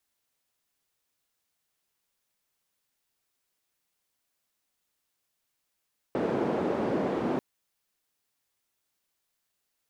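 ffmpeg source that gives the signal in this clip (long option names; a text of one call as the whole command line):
ffmpeg -f lavfi -i "anoisesrc=color=white:duration=1.24:sample_rate=44100:seed=1,highpass=frequency=250,lowpass=frequency=390,volume=-3dB" out.wav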